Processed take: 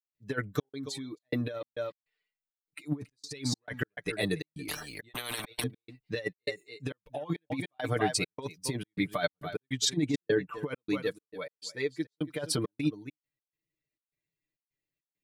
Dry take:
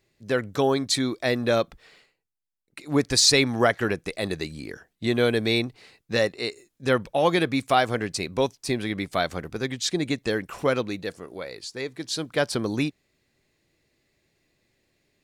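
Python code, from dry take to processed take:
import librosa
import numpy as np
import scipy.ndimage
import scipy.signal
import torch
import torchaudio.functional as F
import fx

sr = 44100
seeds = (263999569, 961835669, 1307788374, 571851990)

p1 = fx.bin_expand(x, sr, power=1.5)
p2 = fx.lowpass(p1, sr, hz=1500.0, slope=6, at=(10.07, 10.63))
p3 = p2 + fx.echo_single(p2, sr, ms=279, db=-18.5, dry=0)
p4 = fx.level_steps(p3, sr, step_db=22, at=(0.63, 1.19))
p5 = fx.step_gate(p4, sr, bpm=102, pattern='.xxx.xxx.xx.x', floor_db=-60.0, edge_ms=4.5)
p6 = fx.over_compress(p5, sr, threshold_db=-30.0, ratio=-0.5)
p7 = fx.low_shelf(p6, sr, hz=93.0, db=-9.0)
p8 = p7 + 0.77 * np.pad(p7, (int(6.7 * sr / 1000.0), 0))[:len(p7)]
y = fx.spectral_comp(p8, sr, ratio=10.0, at=(4.68, 5.64))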